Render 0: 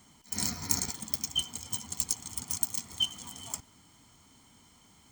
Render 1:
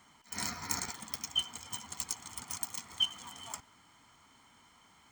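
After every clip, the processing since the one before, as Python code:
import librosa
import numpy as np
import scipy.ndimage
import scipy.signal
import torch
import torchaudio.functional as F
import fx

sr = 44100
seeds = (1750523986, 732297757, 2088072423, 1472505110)

y = fx.peak_eq(x, sr, hz=1400.0, db=13.0, octaves=2.7)
y = y * 10.0 ** (-8.5 / 20.0)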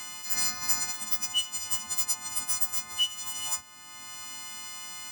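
y = fx.freq_snap(x, sr, grid_st=3)
y = fx.band_squash(y, sr, depth_pct=70)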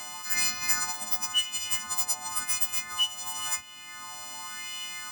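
y = fx.bell_lfo(x, sr, hz=0.94, low_hz=660.0, high_hz=2900.0, db=11)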